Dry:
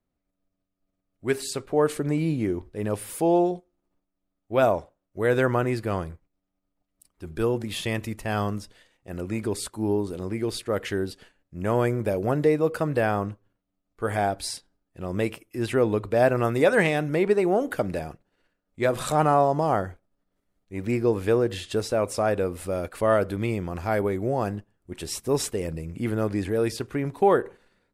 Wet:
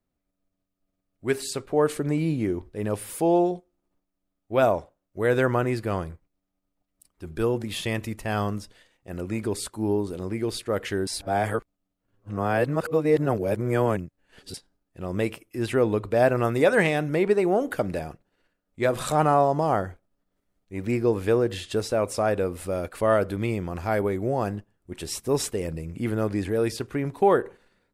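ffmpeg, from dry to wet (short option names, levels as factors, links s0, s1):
-filter_complex "[0:a]asplit=3[s0][s1][s2];[s0]atrim=end=11.072[s3];[s1]atrim=start=11.068:end=14.542,asetpts=PTS-STARTPTS,areverse[s4];[s2]atrim=start=14.538[s5];[s3][s4]acrossfade=d=0.004:c1=hsin:c2=hsin[s6];[s6][s5]acrossfade=d=0.004:c1=hsin:c2=hsin"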